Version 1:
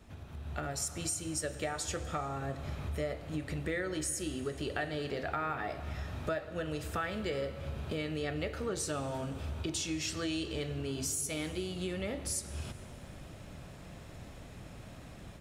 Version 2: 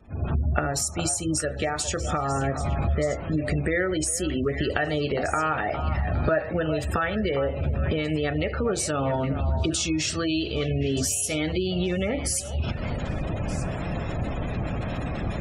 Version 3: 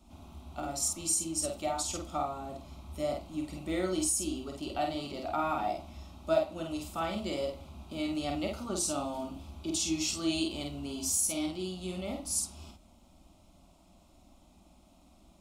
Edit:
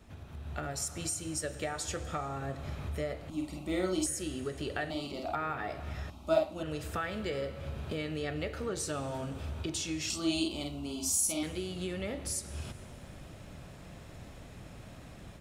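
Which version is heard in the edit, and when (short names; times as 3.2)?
1
3.3–4.06 from 3
4.9–5.35 from 3
6.1–6.63 from 3
10.1–11.43 from 3
not used: 2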